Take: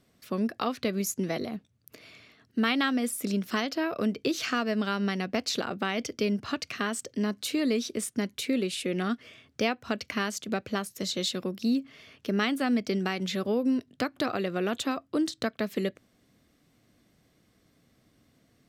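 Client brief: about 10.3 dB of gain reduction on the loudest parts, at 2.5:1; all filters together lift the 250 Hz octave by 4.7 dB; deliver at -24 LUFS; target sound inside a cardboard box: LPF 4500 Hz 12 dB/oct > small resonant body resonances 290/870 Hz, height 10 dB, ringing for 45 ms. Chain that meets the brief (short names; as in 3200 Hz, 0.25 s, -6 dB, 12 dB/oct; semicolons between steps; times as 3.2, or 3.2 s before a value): bell 250 Hz +5.5 dB; compressor 2.5:1, threshold -34 dBFS; LPF 4500 Hz 12 dB/oct; small resonant body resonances 290/870 Hz, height 10 dB, ringing for 45 ms; gain +7 dB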